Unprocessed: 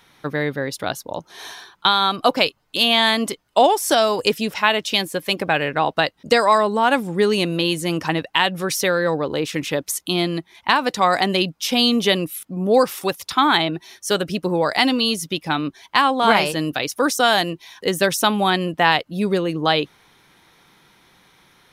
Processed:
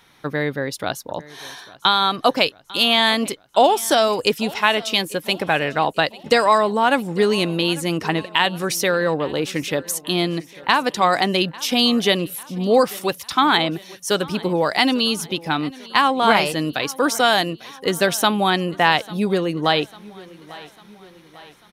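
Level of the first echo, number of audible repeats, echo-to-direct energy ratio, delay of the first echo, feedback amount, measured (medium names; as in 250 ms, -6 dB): -21.0 dB, 3, -19.5 dB, 847 ms, 52%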